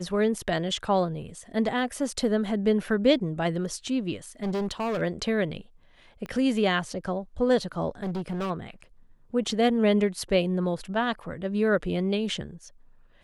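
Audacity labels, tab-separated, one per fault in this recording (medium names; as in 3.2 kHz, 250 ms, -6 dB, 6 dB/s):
4.430000	5.020000	clipped -25 dBFS
6.260000	6.260000	pop -25 dBFS
8.030000	8.510000	clipped -27 dBFS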